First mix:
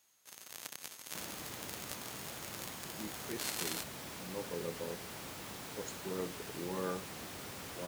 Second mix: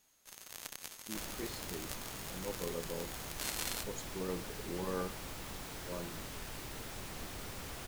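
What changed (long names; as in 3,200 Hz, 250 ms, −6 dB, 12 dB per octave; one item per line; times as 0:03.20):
speech: entry −1.90 s
master: remove high-pass filter 110 Hz 12 dB per octave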